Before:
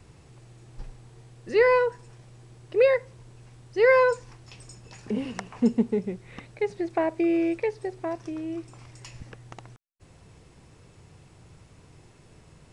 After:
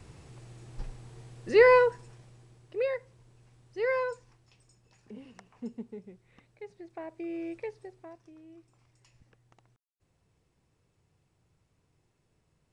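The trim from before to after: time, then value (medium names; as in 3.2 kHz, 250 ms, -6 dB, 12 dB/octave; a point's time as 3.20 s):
1.79 s +1 dB
2.77 s -10.5 dB
3.95 s -10.5 dB
4.64 s -17.5 dB
6.88 s -17.5 dB
7.65 s -10.5 dB
8.25 s -19.5 dB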